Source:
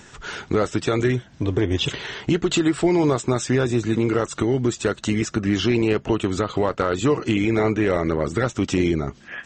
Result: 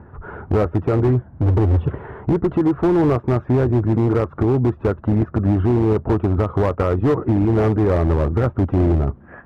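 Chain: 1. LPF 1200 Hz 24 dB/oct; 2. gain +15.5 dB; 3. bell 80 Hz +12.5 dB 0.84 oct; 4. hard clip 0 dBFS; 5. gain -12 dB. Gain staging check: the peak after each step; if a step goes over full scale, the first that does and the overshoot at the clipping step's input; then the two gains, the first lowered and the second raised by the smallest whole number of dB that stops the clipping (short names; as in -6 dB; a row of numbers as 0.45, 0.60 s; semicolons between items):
-8.5, +7.0, +10.0, 0.0, -12.0 dBFS; step 2, 10.0 dB; step 2 +5.5 dB, step 5 -2 dB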